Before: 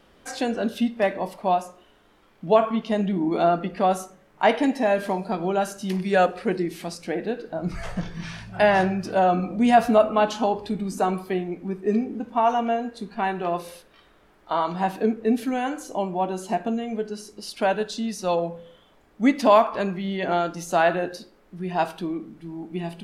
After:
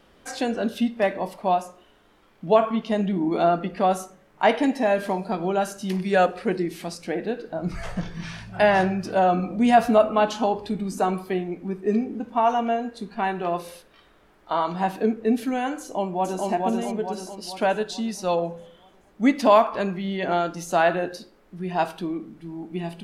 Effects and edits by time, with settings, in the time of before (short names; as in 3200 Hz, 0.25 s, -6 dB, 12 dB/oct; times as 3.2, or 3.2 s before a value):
15.8–16.47 echo throw 0.44 s, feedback 50%, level -2 dB